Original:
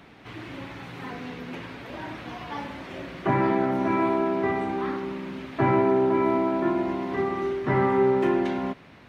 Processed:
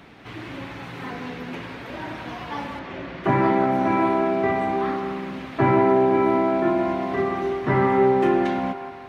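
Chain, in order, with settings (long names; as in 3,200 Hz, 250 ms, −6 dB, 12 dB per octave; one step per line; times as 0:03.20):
0:02.79–0:03.24: high-frequency loss of the air 110 metres
delay with a band-pass on its return 176 ms, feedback 49%, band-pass 1,100 Hz, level −6.5 dB
level +3 dB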